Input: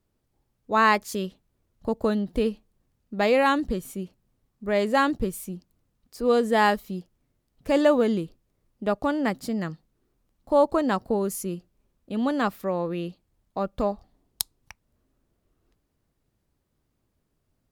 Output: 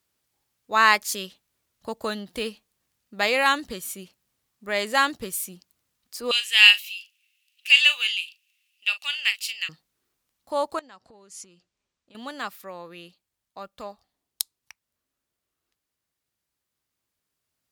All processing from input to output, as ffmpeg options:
-filter_complex "[0:a]asettb=1/sr,asplit=3[a][b][c];[a]atrim=end=6.314[d];[b]atrim=start=6.31:end=9.69,asetpts=PTS-STARTPTS,afade=t=in:d=0.004:c=qsin,afade=t=out:st=3.376:d=0.004:c=qsin,highpass=f=2.7k:t=q:w=12,asplit=2[e][f];[f]adelay=39,volume=-12dB[g];[e][g]amix=inputs=2:normalize=0,atrim=end_sample=149058[h];[c]atrim=start=9.686[i];[d][h]acrossfade=d=0.004:c1=hsin:c2=qsin[j];[j][i]acrossfade=d=0.004:c1=qsin:c2=hsin,asettb=1/sr,asplit=3[k][l][m];[k]atrim=end=10.794[n];[l]atrim=start=10.79:end=12.15,asetpts=PTS-STARTPTS,afade=t=in:d=0.004:c=qsin,afade=t=out:st=1.356:d=0.004:c=qsin,lowpass=f=7.7k:w=0.5412,lowpass=f=7.7k:w=1.3066,acompressor=threshold=-39dB:ratio=8:attack=3.2:release=140:knee=1:detection=peak[o];[m]atrim=start=12.146[p];[n][o]acrossfade=d=0.004:c1=hsin:c2=qsin[q];[q][p]acrossfade=d=0.004:c1=qsin:c2=hsin,highpass=54,tiltshelf=f=860:g=-10,dynaudnorm=f=440:g=17:m=11.5dB,volume=-1dB"

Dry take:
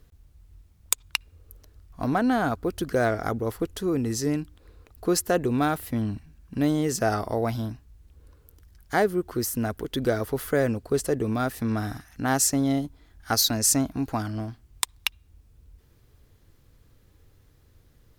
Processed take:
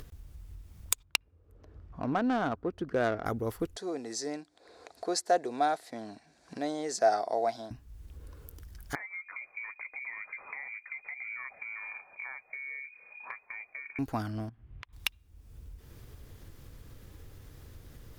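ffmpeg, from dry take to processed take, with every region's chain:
-filter_complex "[0:a]asettb=1/sr,asplit=3[a][b][c];[a]atrim=end=1.034[d];[b]atrim=start=1.03:end=3.26,asetpts=PTS-STARTPTS,afade=t=in:d=0.004:c=qsin,afade=t=out:st=2.226:d=0.004:c=qsin,highpass=f=130:p=1,highshelf=f=3.9k:g=10,adynamicsmooth=sensitivity=1:basefreq=1.3k[e];[c]atrim=start=3.256[f];[d][e]acrossfade=d=0.004:c1=hsin:c2=qsin[g];[g][f]acrossfade=d=0.004:c1=qsin:c2=hsin,asettb=1/sr,asplit=3[h][i][j];[h]atrim=end=3.764[k];[i]atrim=start=3.76:end=7.71,asetpts=PTS-STARTPTS,afade=t=in:d=0.004:c=qsin,afade=t=out:st=3.946:d=0.004:c=qsin,acrusher=bits=9:mode=log:mix=0:aa=0.000001,highpass=450,equalizer=f=700:t=q:w=4:g=10,equalizer=f=1.2k:t=q:w=4:g=-6,equalizer=f=2.9k:t=q:w=4:g=-10,equalizer=f=4.2k:t=q:w=4:g=7,lowpass=f=8.5k:w=0.5412,lowpass=f=8.5k:w=1.3066[l];[j]atrim=start=7.706[m];[k][l]acrossfade=d=0.004:c1=hsin:c2=qsin[n];[n][m]acrossfade=d=0.004:c1=qsin:c2=hsin,asettb=1/sr,asplit=3[o][p][q];[o]atrim=end=8.954[r];[p]atrim=start=8.95:end=13.99,asetpts=PTS-STARTPTS,afade=t=in:d=0.004:c=qsin,afade=t=out:st=5.036:d=0.004:c=qsin,acompressor=threshold=-29dB:ratio=16:attack=3.2:release=140:knee=1:detection=peak,flanger=delay=6.1:depth=3.8:regen=-48:speed=1.1:shape=sinusoidal,lowpass=f=2.1k:t=q:w=0.5098,lowpass=f=2.1k:t=q:w=0.6013,lowpass=f=2.1k:t=q:w=0.9,lowpass=f=2.1k:t=q:w=2.563,afreqshift=-2500[s];[q]atrim=start=13.986[t];[r][s]acrossfade=d=0.004:c1=hsin:c2=qsin[u];[u][t]acrossfade=d=0.004:c1=qsin:c2=hsin,asettb=1/sr,asplit=3[v][w][x];[v]atrim=end=14.494[y];[w]atrim=start=14.49:end=14.93,asetpts=PTS-STARTPTS,afade=t=in:d=0.004:c=qsin,afade=t=out:st=0.436:d=0.004:c=qsin,lowpass=f=2.8k:w=0.5412,lowpass=f=2.8k:w=1.3066,equalizer=f=120:w=1.3:g=6,acompressor=threshold=-45dB:ratio=16:attack=3.2:release=140:knee=1:detection=peak[z];[x]atrim=start=14.926[aa];[y][z]acrossfade=d=0.004:c1=hsin:c2=qsin[ab];[ab][aa]acrossfade=d=0.004:c1=qsin:c2=hsin,bandreject=f=4.1k:w=28,acompressor=mode=upward:threshold=-31dB:ratio=2.5,volume=-5dB"

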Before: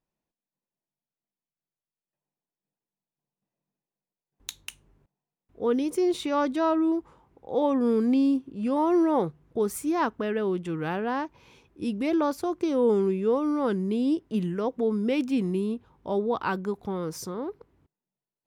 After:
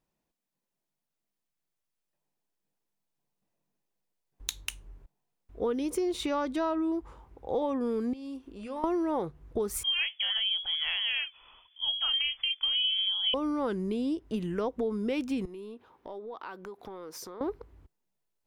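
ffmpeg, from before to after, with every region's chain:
-filter_complex "[0:a]asettb=1/sr,asplit=3[a][b][c];[a]atrim=end=8.134[d];[b]atrim=start=8.13:end=8.84,asetpts=PTS-STARTPTS,afade=t=in:d=0.004:c=qsin,afade=t=out:st=0.706:d=0.004:c=qsin,equalizer=f=130:w=0.72:g=-15,acompressor=threshold=-41dB:ratio=3:attack=3.2:release=140:knee=1:detection=peak,bandreject=f=120.9:t=h:w=4,bandreject=f=241.8:t=h:w=4,bandreject=f=362.7:t=h:w=4,bandreject=f=483.6:t=h:w=4,bandreject=f=604.5:t=h:w=4,bandreject=f=725.4:t=h:w=4,bandreject=f=846.3:t=h:w=4,bandreject=f=967.2:t=h:w=4,bandreject=f=1.0881k:t=h:w=4,bandreject=f=1.209k:t=h:w=4,bandreject=f=1.3299k:t=h:w=4,bandreject=f=1.4508k:t=h:w=4,bandreject=f=1.5717k:t=h:w=4,bandreject=f=1.6926k:t=h:w=4,bandreject=f=1.8135k:t=h:w=4,bandreject=f=1.9344k:t=h:w=4,bandreject=f=2.0553k:t=h:w=4,bandreject=f=2.1762k:t=h:w=4,bandreject=f=2.2971k:t=h:w=4,bandreject=f=2.418k:t=h:w=4,bandreject=f=2.5389k:t=h:w=4,bandreject=f=2.6598k:t=h:w=4,bandreject=f=2.7807k:t=h:w=4,bandreject=f=2.9016k:t=h:w=4,bandreject=f=3.0225k:t=h:w=4,bandreject=f=3.1434k:t=h:w=4,bandreject=f=3.2643k:t=h:w=4,bandreject=f=3.3852k:t=h:w=4[e];[c]atrim=start=8.836[f];[d][e]acrossfade=d=0.004:c1=hsin:c2=qsin[g];[g][f]acrossfade=d=0.004:c1=qsin:c2=hsin,asettb=1/sr,asplit=3[h][i][j];[h]atrim=end=9.834[k];[i]atrim=start=9.83:end=13.34,asetpts=PTS-STARTPTS,afade=t=in:d=0.004:c=qsin,afade=t=out:st=3.506:d=0.004:c=qsin,flanger=delay=0.8:depth=8:regen=-68:speed=1.8:shape=triangular,lowpass=f=3k:t=q:w=0.5098,lowpass=f=3k:t=q:w=0.6013,lowpass=f=3k:t=q:w=0.9,lowpass=f=3k:t=q:w=2.563,afreqshift=-3500,equalizer=f=220:w=1.3:g=-3.5[l];[j]atrim=start=13.336[m];[k][l]acrossfade=d=0.004:c1=hsin:c2=qsin[n];[n][m]acrossfade=d=0.004:c1=qsin:c2=hsin,asettb=1/sr,asplit=3[o][p][q];[o]atrim=end=15.454[r];[p]atrim=start=15.45:end=17.41,asetpts=PTS-STARTPTS,afade=t=in:d=0.004:c=qsin,afade=t=out:st=1.956:d=0.004:c=qsin,highpass=310,equalizer=f=8k:w=1:g=-6,acompressor=threshold=-43dB:ratio=5:attack=3.2:release=140:knee=1:detection=peak[s];[q]atrim=start=17.406[t];[r][s]acrossfade=d=0.004:c1=hsin:c2=qsin[u];[u][t]acrossfade=d=0.004:c1=qsin:c2=hsin,acompressor=threshold=-30dB:ratio=6,asubboost=boost=8:cutoff=53,volume=4dB"

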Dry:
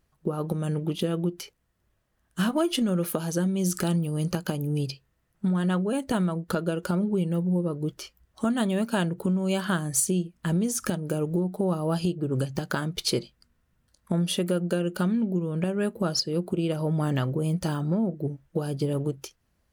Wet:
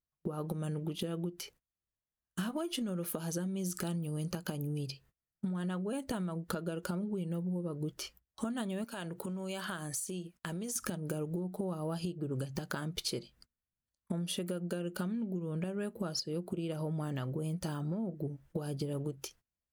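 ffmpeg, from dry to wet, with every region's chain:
-filter_complex "[0:a]asettb=1/sr,asplit=3[a][b][c];[a]atrim=end=8.844[d];[b]atrim=start=8.84:end=10.76,asetpts=PTS-STARTPTS,afade=t=in:d=0.004:c=qsin,afade=t=out:st=1.916:d=0.004:c=qsin,lowshelf=f=340:g=-10,acompressor=threshold=-36dB:ratio=3:attack=3.2:release=140:knee=1:detection=peak[e];[c]atrim=start=10.756[f];[d][e]acrossfade=d=0.004:c1=hsin:c2=qsin[g];[g][f]acrossfade=d=0.004:c1=qsin:c2=hsin,agate=range=-26dB:threshold=-54dB:ratio=16:detection=peak,highshelf=f=9.1k:g=3.5,acompressor=threshold=-34dB:ratio=6"

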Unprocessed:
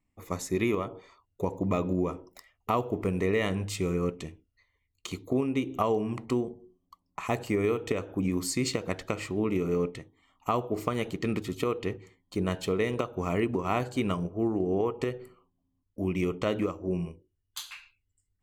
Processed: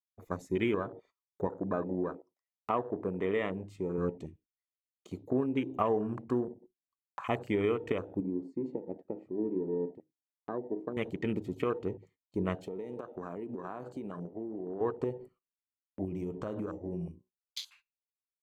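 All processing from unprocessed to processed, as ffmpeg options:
-filter_complex "[0:a]asettb=1/sr,asplit=3[a][b][c];[a]atrim=end=1.474[d];[b]atrim=start=1.47:end=3.98,asetpts=PTS-STARTPTS,afade=t=in:d=0.004:c=qsin,afade=t=out:st=2.506:d=0.004:c=qsin,highpass=f=230:p=1,highshelf=f=2.6k:g=-8.5[e];[c]atrim=start=3.976[f];[d][e]acrossfade=d=0.004:c1=hsin:c2=qsin[g];[g][f]acrossfade=d=0.004:c1=qsin:c2=hsin,asettb=1/sr,asplit=3[h][i][j];[h]atrim=end=8.204[k];[i]atrim=start=8.2:end=10.97,asetpts=PTS-STARTPTS,afade=t=in:d=0.004:c=qsin,afade=t=out:st=2.766:d=0.004:c=qsin,bandpass=f=330:t=q:w=1.5,bandreject=f=50:t=h:w=6,bandreject=f=100:t=h:w=6,bandreject=f=150:t=h:w=6,bandreject=f=200:t=h:w=6,bandreject=f=250:t=h:w=6,bandreject=f=300:t=h:w=6[l];[j]atrim=start=10.966[m];[k][l]acrossfade=d=0.004:c1=hsin:c2=qsin[n];[n][m]acrossfade=d=0.004:c1=qsin:c2=hsin,asettb=1/sr,asplit=3[o][p][q];[o]atrim=end=12.654[r];[p]atrim=start=12.65:end=14.81,asetpts=PTS-STARTPTS,afade=t=in:d=0.004:c=qsin,afade=t=out:st=2.156:d=0.004:c=qsin,highpass=170,acompressor=threshold=-32dB:ratio=10:attack=3.2:release=140:knee=1:detection=peak[s];[q]atrim=start=14.806[t];[r][s]acrossfade=d=0.004:c1=hsin:c2=qsin[u];[u][t]acrossfade=d=0.004:c1=qsin:c2=hsin,asettb=1/sr,asplit=3[v][w][x];[v]atrim=end=16.044[y];[w]atrim=start=16.04:end=17.7,asetpts=PTS-STARTPTS,afade=t=in:d=0.004:c=qsin,afade=t=out:st=1.656:d=0.004:c=qsin,bandreject=f=62.13:t=h:w=4,bandreject=f=124.26:t=h:w=4,bandreject=f=186.39:t=h:w=4,bandreject=f=248.52:t=h:w=4,bandreject=f=310.65:t=h:w=4,bandreject=f=372.78:t=h:w=4,bandreject=f=434.91:t=h:w=4,bandreject=f=497.04:t=h:w=4,bandreject=f=559.17:t=h:w=4,bandreject=f=621.3:t=h:w=4,bandreject=f=683.43:t=h:w=4,bandreject=f=745.56:t=h:w=4,bandreject=f=807.69:t=h:w=4,bandreject=f=869.82:t=h:w=4,bandreject=f=931.95:t=h:w=4,bandreject=f=994.08:t=h:w=4,bandreject=f=1.05621k:t=h:w=4,acompressor=threshold=-30dB:ratio=6:attack=3.2:release=140:knee=1:detection=peak,bass=f=250:g=2,treble=f=4k:g=7[z];[x]atrim=start=17.696[aa];[y][z]acrossfade=d=0.004:c1=hsin:c2=qsin[ab];[ab][aa]acrossfade=d=0.004:c1=qsin:c2=hsin,afwtdn=0.0112,agate=range=-20dB:threshold=-58dB:ratio=16:detection=peak,lowshelf=f=77:g=-8,volume=-2dB"

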